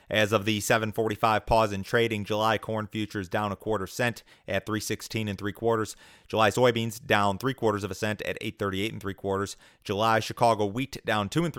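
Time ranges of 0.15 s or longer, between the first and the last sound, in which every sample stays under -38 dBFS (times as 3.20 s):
4.19–4.48 s
5.93–6.30 s
9.53–9.86 s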